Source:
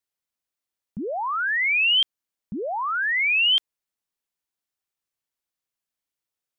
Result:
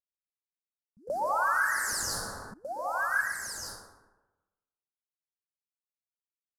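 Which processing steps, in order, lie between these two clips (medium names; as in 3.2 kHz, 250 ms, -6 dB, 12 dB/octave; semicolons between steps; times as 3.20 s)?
CVSD coder 64 kbps; gate with hold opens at -25 dBFS; elliptic band-stop 1.6–4.6 kHz, stop band 50 dB; phaser 0.92 Hz, delay 4.3 ms, feedback 43%; plate-style reverb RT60 1.1 s, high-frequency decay 0.5×, pre-delay 110 ms, DRR -5 dB; 1.07–2.54 s: level flattener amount 50%; trim -8.5 dB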